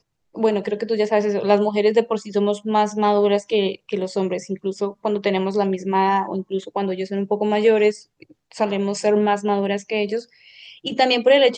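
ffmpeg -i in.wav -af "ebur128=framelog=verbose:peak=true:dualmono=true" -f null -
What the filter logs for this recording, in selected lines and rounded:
Integrated loudness:
  I:         -17.6 LUFS
  Threshold: -28.0 LUFS
Loudness range:
  LRA:         3.1 LU
  Threshold: -38.2 LUFS
  LRA low:   -19.7 LUFS
  LRA high:  -16.6 LUFS
True peak:
  Peak:       -2.6 dBFS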